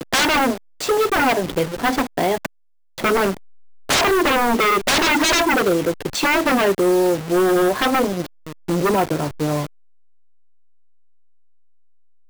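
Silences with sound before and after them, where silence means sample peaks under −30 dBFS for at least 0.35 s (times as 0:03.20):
0:02.46–0:02.98
0:03.37–0:03.89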